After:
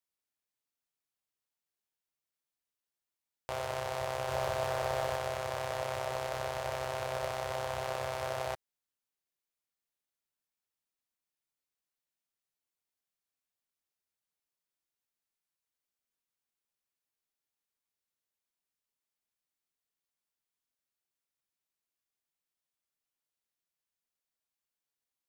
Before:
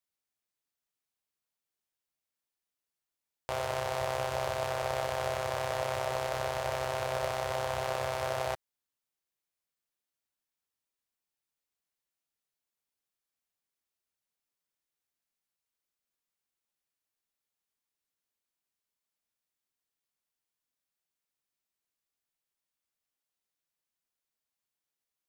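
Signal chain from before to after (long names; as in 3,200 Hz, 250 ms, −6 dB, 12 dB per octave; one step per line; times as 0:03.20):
0:04.28–0:05.17: leveller curve on the samples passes 1
level −3 dB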